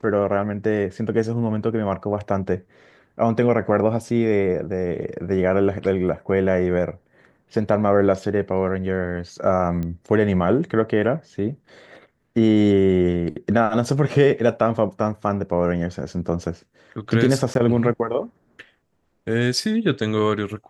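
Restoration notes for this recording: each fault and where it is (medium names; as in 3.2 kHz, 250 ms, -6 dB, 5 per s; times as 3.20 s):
9.83 s: pop -18 dBFS
17.54–17.55 s: dropout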